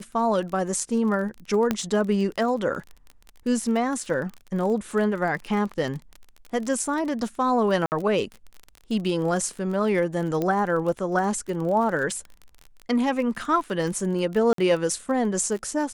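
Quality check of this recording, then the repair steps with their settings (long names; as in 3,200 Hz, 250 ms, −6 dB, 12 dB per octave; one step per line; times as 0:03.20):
surface crackle 29 per second −31 dBFS
0:01.71: click −9 dBFS
0:07.86–0:07.92: drop-out 59 ms
0:10.42: click −14 dBFS
0:14.53–0:14.58: drop-out 53 ms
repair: click removal
repair the gap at 0:07.86, 59 ms
repair the gap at 0:14.53, 53 ms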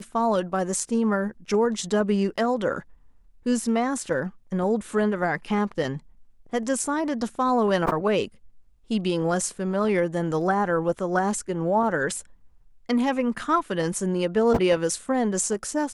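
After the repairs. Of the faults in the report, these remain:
0:10.42: click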